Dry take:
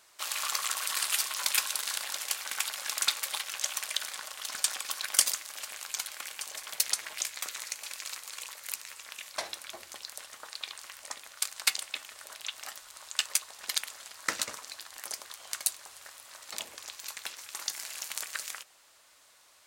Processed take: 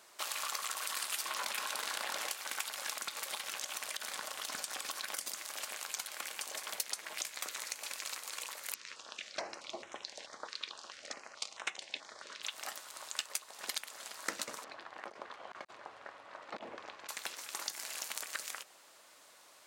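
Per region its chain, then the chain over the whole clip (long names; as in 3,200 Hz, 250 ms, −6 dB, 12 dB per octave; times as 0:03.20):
0:01.25–0:02.30: high-shelf EQ 3,600 Hz −9 dB + envelope flattener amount 70%
0:02.95–0:05.38: low-shelf EQ 190 Hz +8.5 dB + downward compressor 4 to 1, threshold −32 dBFS
0:08.74–0:12.43: low-pass filter 6,200 Hz 24 dB per octave + notch on a step sequencer 4.6 Hz 750–4,600 Hz
0:14.64–0:17.09: compressor whose output falls as the input rises −41 dBFS, ratio −0.5 + Bessel low-pass filter 1,500 Hz
whole clip: high-pass filter 190 Hz 12 dB per octave; tilt shelving filter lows +4 dB, about 920 Hz; downward compressor 3 to 1, threshold −40 dBFS; level +3.5 dB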